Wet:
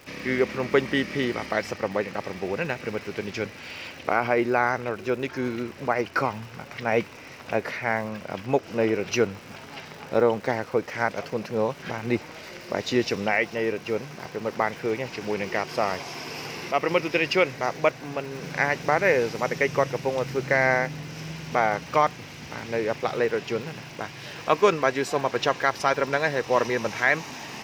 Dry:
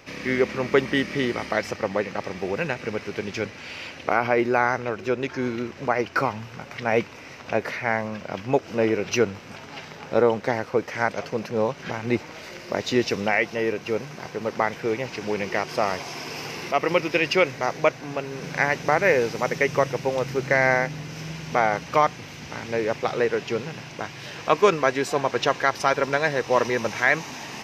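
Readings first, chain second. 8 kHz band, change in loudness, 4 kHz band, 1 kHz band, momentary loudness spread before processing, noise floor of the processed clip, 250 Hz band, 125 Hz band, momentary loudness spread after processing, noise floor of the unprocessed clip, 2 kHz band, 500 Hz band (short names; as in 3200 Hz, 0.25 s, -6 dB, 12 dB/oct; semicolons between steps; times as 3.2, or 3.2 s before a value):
-2.0 dB, -1.5 dB, -1.5 dB, -1.5 dB, 12 LU, -43 dBFS, -1.5 dB, -1.5 dB, 12 LU, -42 dBFS, -1.5 dB, -1.5 dB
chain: notch 6200 Hz, Q 30; crackle 290/s -39 dBFS; gain -1.5 dB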